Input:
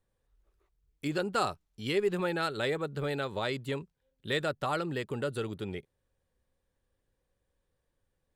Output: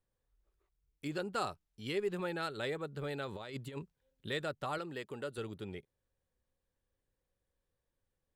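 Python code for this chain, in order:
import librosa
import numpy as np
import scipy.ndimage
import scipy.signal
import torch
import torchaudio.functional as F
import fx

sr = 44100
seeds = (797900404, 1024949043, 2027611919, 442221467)

y = fx.over_compress(x, sr, threshold_db=-36.0, ratio=-0.5, at=(3.27, 4.28), fade=0.02)
y = fx.low_shelf(y, sr, hz=150.0, db=-11.5, at=(4.78, 5.38))
y = F.gain(torch.from_numpy(y), -6.5).numpy()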